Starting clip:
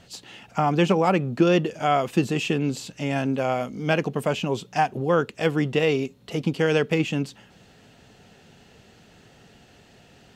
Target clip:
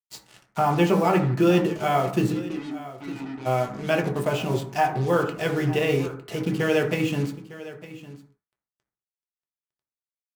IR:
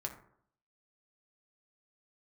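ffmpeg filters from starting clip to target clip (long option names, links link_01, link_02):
-filter_complex "[0:a]asplit=3[link_01][link_02][link_03];[link_01]afade=type=out:start_time=2.31:duration=0.02[link_04];[link_02]asplit=3[link_05][link_06][link_07];[link_05]bandpass=frequency=300:width_type=q:width=8,volume=0dB[link_08];[link_06]bandpass=frequency=870:width_type=q:width=8,volume=-6dB[link_09];[link_07]bandpass=frequency=2240:width_type=q:width=8,volume=-9dB[link_10];[link_08][link_09][link_10]amix=inputs=3:normalize=0,afade=type=in:start_time=2.31:duration=0.02,afade=type=out:start_time=3.45:duration=0.02[link_11];[link_03]afade=type=in:start_time=3.45:duration=0.02[link_12];[link_04][link_11][link_12]amix=inputs=3:normalize=0,acrusher=bits=5:mix=0:aa=0.5,aecho=1:1:906:0.15[link_13];[1:a]atrim=start_sample=2205,afade=type=out:start_time=0.28:duration=0.01,atrim=end_sample=12789[link_14];[link_13][link_14]afir=irnorm=-1:irlink=0"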